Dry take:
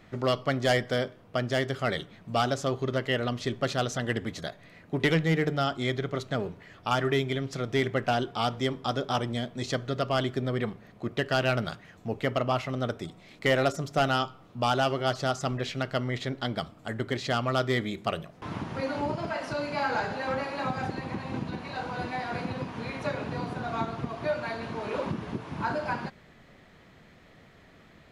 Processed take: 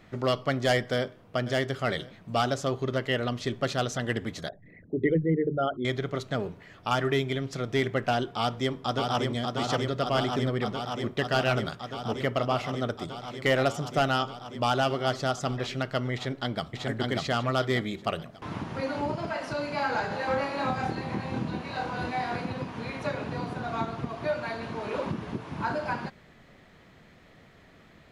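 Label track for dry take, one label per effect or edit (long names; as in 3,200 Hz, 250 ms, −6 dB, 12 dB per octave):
0.930000	1.390000	delay throw 530 ms, feedback 45%, level −14 dB
4.490000	5.850000	spectral envelope exaggerated exponent 3
8.380000	9.290000	delay throw 590 ms, feedback 85%, level −3.5 dB
16.140000	16.750000	delay throw 590 ms, feedback 35%, level −1 dB
20.090000	22.360000	double-tracking delay 25 ms −3 dB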